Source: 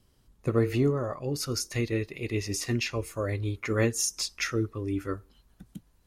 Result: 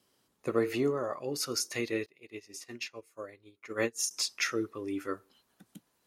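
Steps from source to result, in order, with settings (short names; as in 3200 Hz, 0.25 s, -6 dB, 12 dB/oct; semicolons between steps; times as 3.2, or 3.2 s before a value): Bessel high-pass 350 Hz, order 2; 2.06–4.11 upward expander 2.5:1, over -39 dBFS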